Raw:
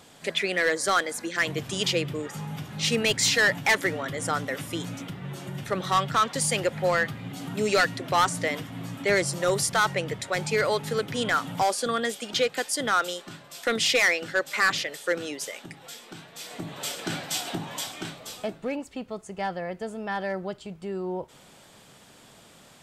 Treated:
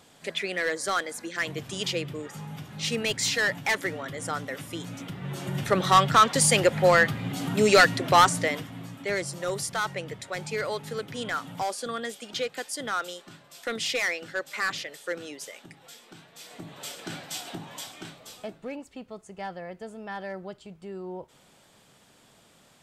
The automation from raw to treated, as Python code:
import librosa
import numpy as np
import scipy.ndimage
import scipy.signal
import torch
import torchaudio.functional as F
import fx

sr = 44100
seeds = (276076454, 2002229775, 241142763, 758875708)

y = fx.gain(x, sr, db=fx.line((4.83, -4.0), (5.57, 5.0), (8.17, 5.0), (8.97, -6.0)))